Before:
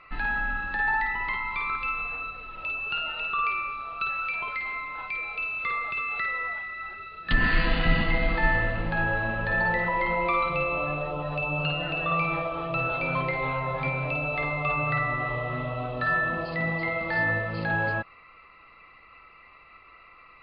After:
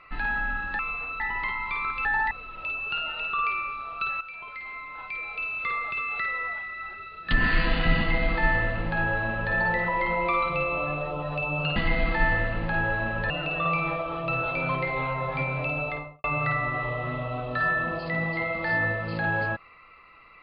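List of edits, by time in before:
0.79–1.05 swap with 1.9–2.31
4.21–5.54 fade in, from -12 dB
7.99–9.53 copy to 11.76
14.26–14.7 studio fade out

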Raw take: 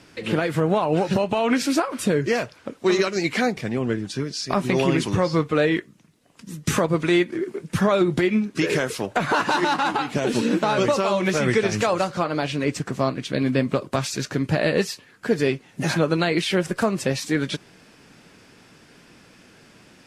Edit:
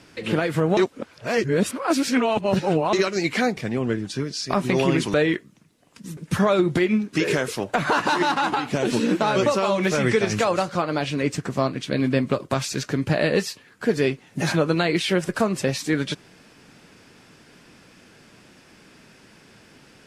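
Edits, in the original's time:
0.77–2.93 reverse
5.14–5.57 cut
6.6–7.59 cut

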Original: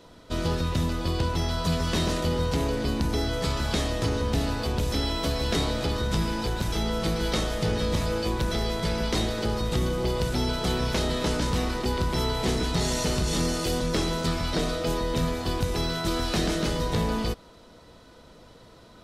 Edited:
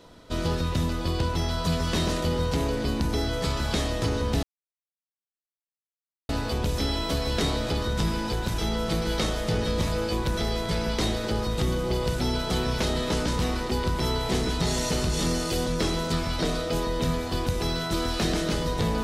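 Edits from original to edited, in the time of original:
4.43 insert silence 1.86 s

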